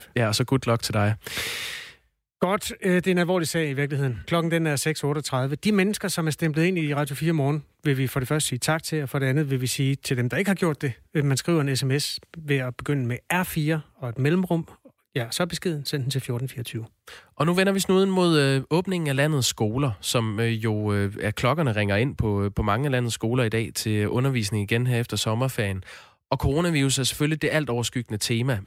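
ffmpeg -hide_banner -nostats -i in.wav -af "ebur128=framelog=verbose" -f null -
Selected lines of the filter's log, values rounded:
Integrated loudness:
  I:         -24.5 LUFS
  Threshold: -34.6 LUFS
Loudness range:
  LRA:         3.5 LU
  Threshold: -44.7 LUFS
  LRA low:   -26.5 LUFS
  LRA high:  -22.9 LUFS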